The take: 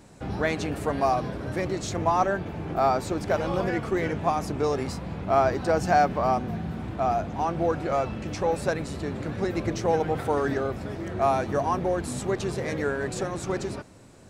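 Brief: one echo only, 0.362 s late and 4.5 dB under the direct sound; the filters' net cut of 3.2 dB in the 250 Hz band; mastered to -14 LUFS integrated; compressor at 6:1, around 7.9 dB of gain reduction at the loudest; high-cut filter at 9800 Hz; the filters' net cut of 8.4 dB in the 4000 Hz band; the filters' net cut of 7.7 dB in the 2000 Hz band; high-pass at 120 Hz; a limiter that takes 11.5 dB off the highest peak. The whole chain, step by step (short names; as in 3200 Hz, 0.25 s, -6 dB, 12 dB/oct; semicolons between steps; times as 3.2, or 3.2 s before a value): HPF 120 Hz; LPF 9800 Hz; bell 250 Hz -4 dB; bell 2000 Hz -9 dB; bell 4000 Hz -8.5 dB; compressor 6:1, threshold -27 dBFS; limiter -29 dBFS; echo 0.362 s -4.5 dB; gain +22.5 dB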